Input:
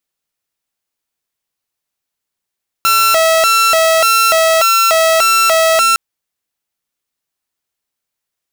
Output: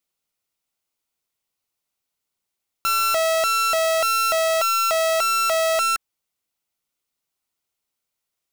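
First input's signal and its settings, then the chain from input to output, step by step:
siren hi-lo 649–1350 Hz 1.7 per s saw -6 dBFS 3.11 s
band-stop 1.7 kHz, Q 7.4; peak limiter -16 dBFS; waveshaping leveller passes 1

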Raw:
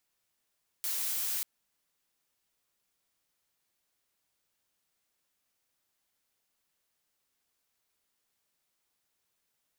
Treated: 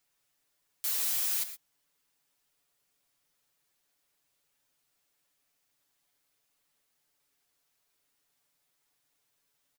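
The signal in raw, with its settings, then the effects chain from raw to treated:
noise blue, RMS -33 dBFS 0.59 s
comb 7 ms, depth 88%; gated-style reverb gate 140 ms rising, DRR 10.5 dB

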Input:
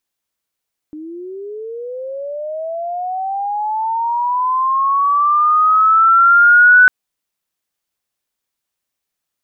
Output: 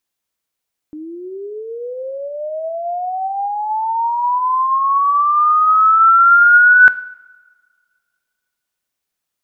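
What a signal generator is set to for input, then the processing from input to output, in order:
sweep linear 300 Hz -> 1.5 kHz -27.5 dBFS -> -4 dBFS 5.95 s
two-slope reverb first 0.76 s, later 2 s, from -16 dB, DRR 15 dB

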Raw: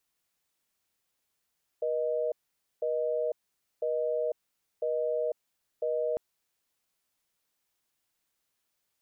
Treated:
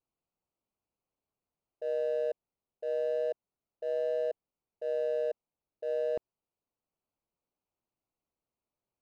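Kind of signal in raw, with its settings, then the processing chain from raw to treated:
call progress tone busy tone, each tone -29.5 dBFS 4.35 s
local Wiener filter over 25 samples; transient shaper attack -6 dB, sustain -2 dB; vibrato 0.32 Hz 18 cents

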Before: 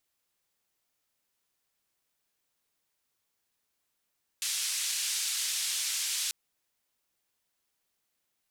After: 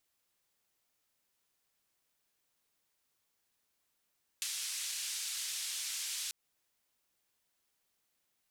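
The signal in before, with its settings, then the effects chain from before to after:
noise band 2.9–8.8 kHz, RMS -32 dBFS 1.89 s
compression 6:1, threshold -36 dBFS

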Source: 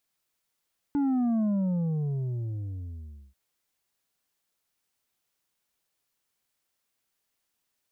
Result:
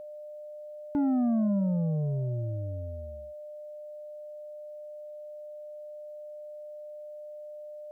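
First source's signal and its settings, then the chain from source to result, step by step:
sub drop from 290 Hz, over 2.39 s, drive 5.5 dB, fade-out 1.94 s, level -23.5 dB
whistle 600 Hz -40 dBFS

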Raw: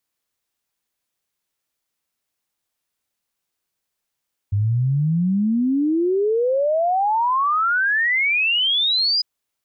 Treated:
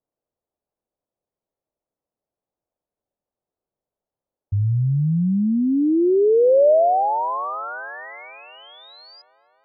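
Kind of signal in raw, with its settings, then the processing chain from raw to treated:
log sweep 98 Hz -> 5 kHz 4.70 s -16 dBFS
FFT filter 250 Hz 0 dB, 600 Hz +6 dB, 2.7 kHz -27 dB; feedback echo behind a band-pass 255 ms, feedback 66%, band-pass 950 Hz, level -17 dB

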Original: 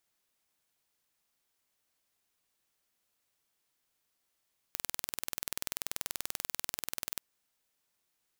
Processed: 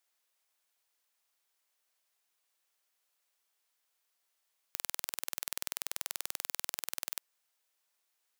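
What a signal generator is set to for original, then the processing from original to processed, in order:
pulse train 20.6 per s, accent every 0, -7 dBFS 2.47 s
high-pass 520 Hz 12 dB/octave

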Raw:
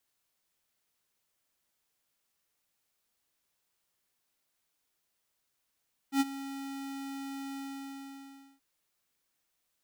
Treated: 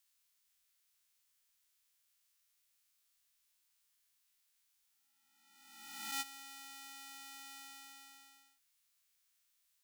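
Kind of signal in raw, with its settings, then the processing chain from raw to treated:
ADSR square 274 Hz, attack 84 ms, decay 33 ms, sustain -16 dB, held 1.44 s, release 1040 ms -24 dBFS
reverse spectral sustain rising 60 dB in 1.38 s; amplifier tone stack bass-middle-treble 10-0-10; band-stop 760 Hz, Q 12

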